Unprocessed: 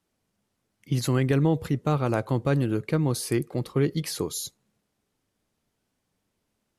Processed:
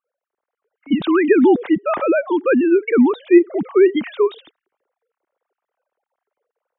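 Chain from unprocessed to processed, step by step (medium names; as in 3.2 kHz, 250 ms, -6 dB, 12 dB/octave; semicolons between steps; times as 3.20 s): formants replaced by sine waves; level-controlled noise filter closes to 1.3 kHz, open at -23.5 dBFS; level rider gain up to 7 dB; trim +3 dB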